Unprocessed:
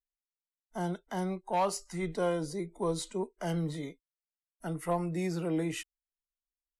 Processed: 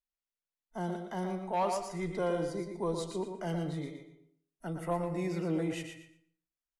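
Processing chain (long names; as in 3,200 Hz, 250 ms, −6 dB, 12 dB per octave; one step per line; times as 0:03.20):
high-shelf EQ 5,200 Hz −7 dB
repeating echo 117 ms, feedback 21%, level −7 dB
on a send at −11 dB: convolution reverb RT60 0.65 s, pre-delay 80 ms
on the sum: level −2 dB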